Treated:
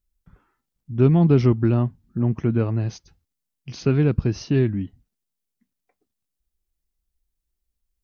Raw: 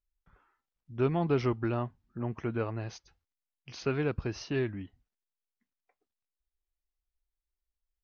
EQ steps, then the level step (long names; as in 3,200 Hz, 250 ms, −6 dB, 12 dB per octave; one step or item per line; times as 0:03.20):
parametric band 190 Hz +9.5 dB 2.3 octaves
low-shelf EQ 270 Hz +9 dB
high-shelf EQ 3,700 Hz +9.5 dB
0.0 dB